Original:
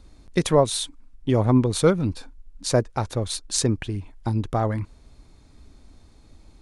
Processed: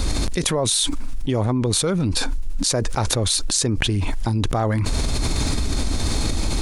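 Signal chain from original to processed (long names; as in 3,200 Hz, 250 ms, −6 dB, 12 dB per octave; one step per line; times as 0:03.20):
high-shelf EQ 2,800 Hz +7.5 dB
envelope flattener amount 100%
level −7 dB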